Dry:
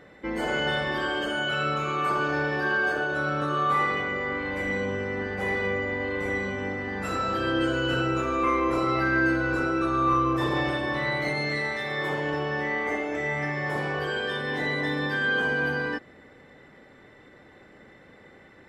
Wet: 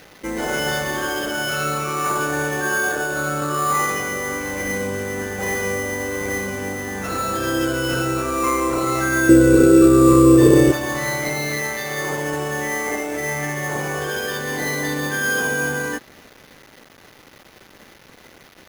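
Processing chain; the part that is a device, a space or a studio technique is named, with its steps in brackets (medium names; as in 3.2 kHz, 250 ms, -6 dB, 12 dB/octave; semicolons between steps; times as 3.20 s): 9.29–10.72 s: resonant low shelf 590 Hz +9 dB, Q 3; early 8-bit sampler (sample-rate reducer 8.2 kHz, jitter 0%; bit crusher 8-bit); trim +4 dB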